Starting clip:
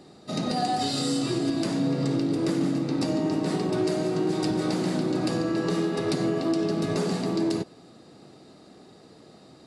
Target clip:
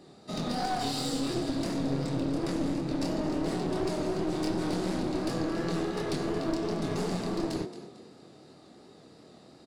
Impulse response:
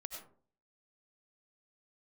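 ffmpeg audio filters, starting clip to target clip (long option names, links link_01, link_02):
-filter_complex "[0:a]flanger=delay=22.5:depth=7:speed=2.8,asplit=4[link_01][link_02][link_03][link_04];[link_02]adelay=224,afreqshift=33,volume=-14dB[link_05];[link_03]adelay=448,afreqshift=66,volume=-23.4dB[link_06];[link_04]adelay=672,afreqshift=99,volume=-32.7dB[link_07];[link_01][link_05][link_06][link_07]amix=inputs=4:normalize=0,aeval=exprs='clip(val(0),-1,0.0237)':channel_layout=same"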